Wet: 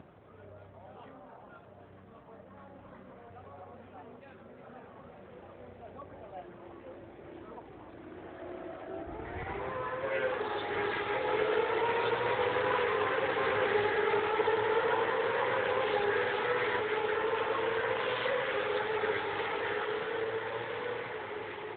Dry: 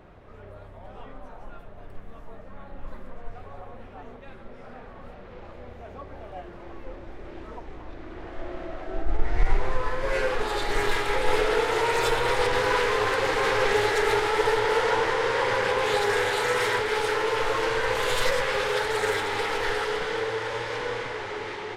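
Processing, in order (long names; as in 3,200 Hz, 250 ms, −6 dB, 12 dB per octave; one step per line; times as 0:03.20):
upward compression, threshold −45 dBFS
pitch vibrato 0.35 Hz 7.8 cents
level −5 dB
AMR narrowband 12.2 kbit/s 8,000 Hz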